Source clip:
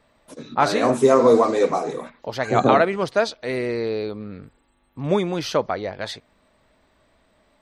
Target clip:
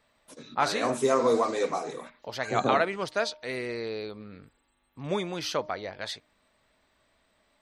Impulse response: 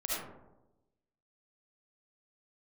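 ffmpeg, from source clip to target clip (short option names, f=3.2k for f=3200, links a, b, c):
-af "tiltshelf=f=1.1k:g=-4,bandreject=f=306:t=h:w=4,bandreject=f=612:t=h:w=4,bandreject=f=918:t=h:w=4,volume=-6.5dB"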